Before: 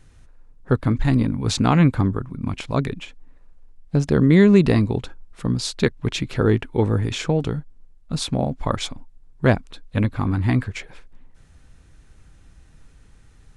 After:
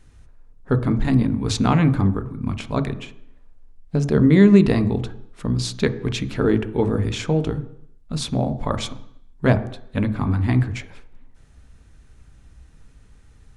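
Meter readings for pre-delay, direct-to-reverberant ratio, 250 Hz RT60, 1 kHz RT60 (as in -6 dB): 3 ms, 9.5 dB, 0.70 s, 0.70 s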